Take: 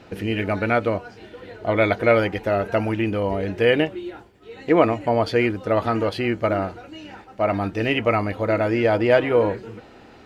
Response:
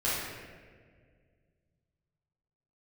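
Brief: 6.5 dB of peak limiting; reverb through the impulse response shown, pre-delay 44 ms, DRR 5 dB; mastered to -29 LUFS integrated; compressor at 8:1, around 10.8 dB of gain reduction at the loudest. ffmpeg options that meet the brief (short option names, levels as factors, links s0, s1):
-filter_complex "[0:a]acompressor=threshold=0.0708:ratio=8,alimiter=limit=0.1:level=0:latency=1,asplit=2[s0][s1];[1:a]atrim=start_sample=2205,adelay=44[s2];[s1][s2]afir=irnorm=-1:irlink=0,volume=0.178[s3];[s0][s3]amix=inputs=2:normalize=0,volume=1.06"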